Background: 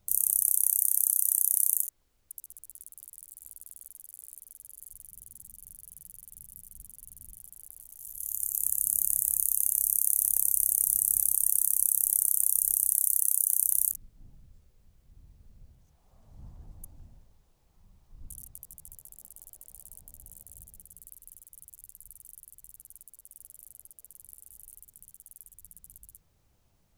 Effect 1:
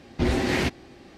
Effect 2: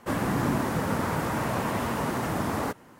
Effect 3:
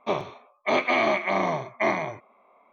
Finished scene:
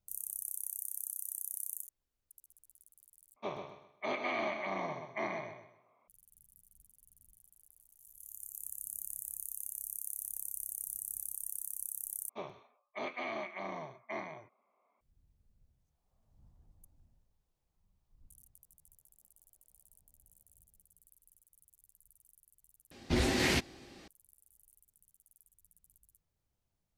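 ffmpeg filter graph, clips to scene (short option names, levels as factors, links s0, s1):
-filter_complex "[3:a]asplit=2[s0][s1];[0:a]volume=0.168[s2];[s0]aecho=1:1:128|256|384|512:0.447|0.134|0.0402|0.0121[s3];[1:a]highshelf=f=3100:g=10[s4];[s2]asplit=4[s5][s6][s7][s8];[s5]atrim=end=3.364[s9];[s3]atrim=end=2.72,asetpts=PTS-STARTPTS,volume=0.211[s10];[s6]atrim=start=6.076:end=12.294[s11];[s1]atrim=end=2.72,asetpts=PTS-STARTPTS,volume=0.141[s12];[s7]atrim=start=15.006:end=22.914[s13];[s4]atrim=end=1.17,asetpts=PTS-STARTPTS,volume=0.447[s14];[s8]atrim=start=24.076[s15];[s9][s10]acrossfade=d=0.004:c1=hsin:c2=hsin[s16];[s16][s11]acrossfade=d=0.004:c1=hsin:c2=hsin[s17];[s17][s12]acrossfade=d=0.004:c1=hsin:c2=hsin[s18];[s18][s13]acrossfade=d=0.004:c1=hsin:c2=hsin[s19];[s19][s14]acrossfade=d=0.004:c1=hsin:c2=hsin[s20];[s20][s15]acrossfade=d=0.004:c1=hsin:c2=hsin"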